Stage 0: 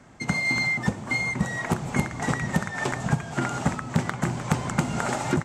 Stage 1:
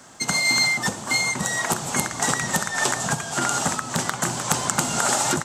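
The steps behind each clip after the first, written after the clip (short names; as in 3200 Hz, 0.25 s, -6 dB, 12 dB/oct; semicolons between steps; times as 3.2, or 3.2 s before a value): bell 2200 Hz -8.5 dB 0.58 oct; in parallel at +1.5 dB: limiter -19 dBFS, peak gain reduction 7.5 dB; on the sum: tilt +3.5 dB/oct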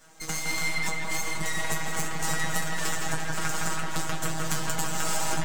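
resonator 160 Hz, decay 0.19 s, harmonics all, mix 100%; half-wave rectifier; analogue delay 0.163 s, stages 4096, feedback 72%, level -3.5 dB; gain +5.5 dB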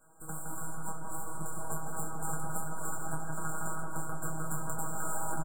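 brick-wall FIR band-stop 1600–7100 Hz; doubler 26 ms -7 dB; gain -7 dB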